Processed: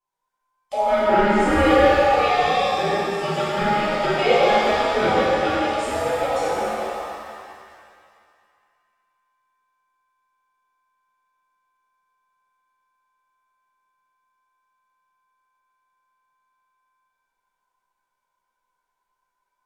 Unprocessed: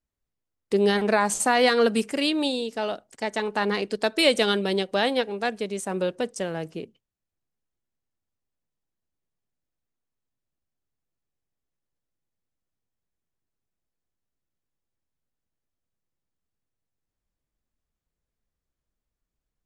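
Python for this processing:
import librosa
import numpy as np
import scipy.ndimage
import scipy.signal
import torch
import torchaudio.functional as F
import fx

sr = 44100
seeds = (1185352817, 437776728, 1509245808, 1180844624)

y = fx.band_invert(x, sr, width_hz=1000)
y = fx.env_lowpass_down(y, sr, base_hz=2000.0, full_db=-19.5)
y = fx.rev_shimmer(y, sr, seeds[0], rt60_s=2.2, semitones=7, shimmer_db=-8, drr_db=-11.5)
y = y * librosa.db_to_amplitude(-6.5)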